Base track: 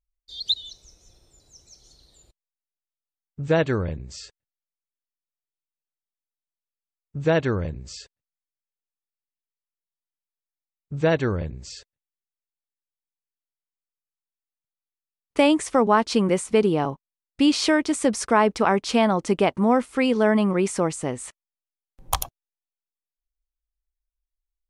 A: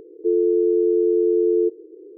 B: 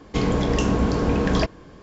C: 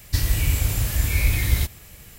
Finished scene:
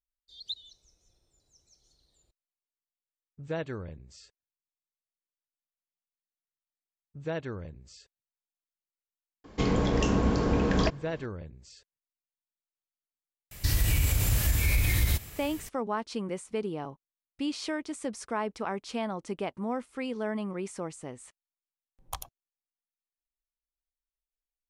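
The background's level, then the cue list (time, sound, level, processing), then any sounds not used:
base track -13.5 dB
9.44 add B -4.5 dB
13.51 add C -0.5 dB + limiter -15.5 dBFS
not used: A

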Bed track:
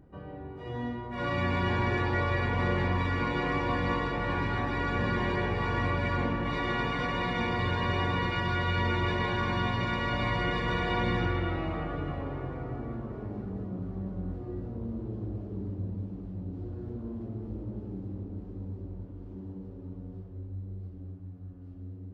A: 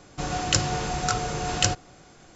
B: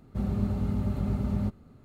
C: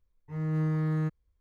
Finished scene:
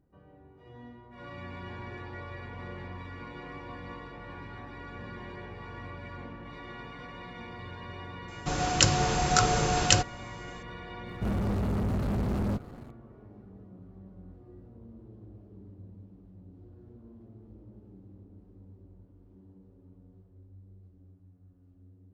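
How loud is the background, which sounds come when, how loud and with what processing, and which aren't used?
bed track -13.5 dB
8.28 add A -1 dB + AGC gain up to 6 dB
11.07 add B -9.5 dB + sample leveller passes 5
not used: C

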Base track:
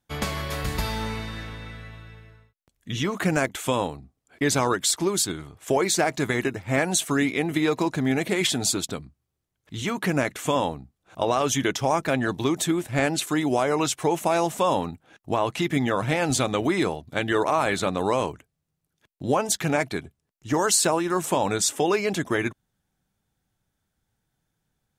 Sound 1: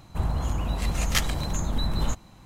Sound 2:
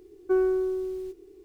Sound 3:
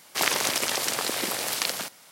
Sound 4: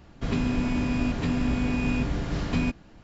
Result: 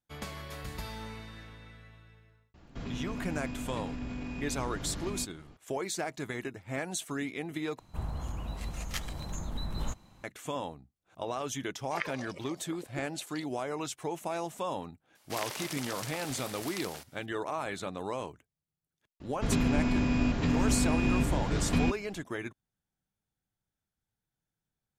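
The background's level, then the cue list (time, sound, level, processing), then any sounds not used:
base track -12.5 dB
2.54 add 4 -5.5 dB + limiter -25 dBFS
7.79 replace with 1 -10.5 dB + vocal rider
11.74 add 3 -9.5 dB + spectral expander 4:1
15.15 add 3 -14 dB
19.2 add 4 -1.5 dB
not used: 2

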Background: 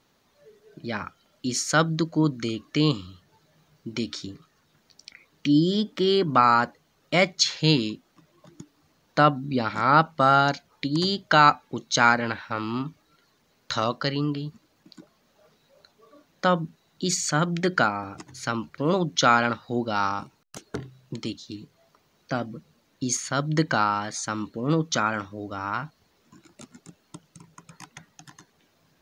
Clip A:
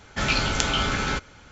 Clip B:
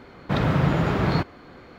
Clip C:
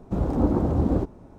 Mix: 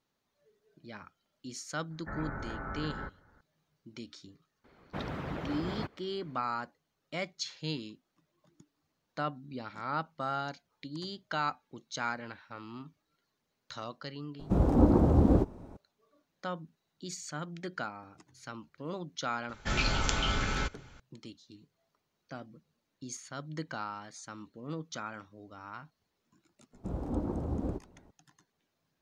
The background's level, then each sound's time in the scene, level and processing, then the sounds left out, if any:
background -16 dB
1.9 add A -13.5 dB + steep low-pass 1900 Hz 72 dB/oct
4.64 add B -10.5 dB + harmonic-percussive split harmonic -13 dB
14.39 add C -1 dB
19.49 add A -7.5 dB + low shelf 62 Hz +8.5 dB
26.73 add C -12 dB

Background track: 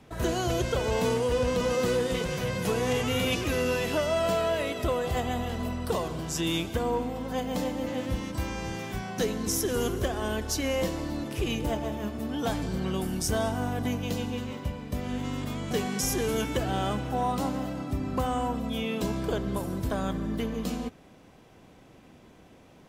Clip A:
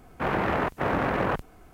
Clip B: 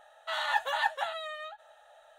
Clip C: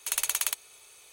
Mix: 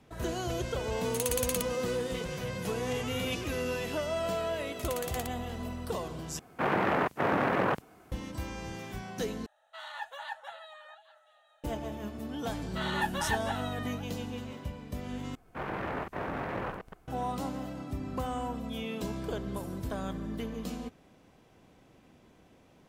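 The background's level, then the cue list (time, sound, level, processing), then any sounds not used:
background track -6 dB
1.08 add C -12.5 dB + tilt shelf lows -7.5 dB
4.73 add C -13.5 dB + spectral limiter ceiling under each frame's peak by 14 dB
6.39 replace with A -1.5 dB + HPF 130 Hz
9.46 replace with B -11.5 dB + delay with a stepping band-pass 0.205 s, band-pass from 190 Hz, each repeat 1.4 oct, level -8 dB
12.48 add B -3.5 dB + doubler 14 ms -11 dB
15.35 replace with A -10.5 dB + reverse delay 0.122 s, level -5 dB

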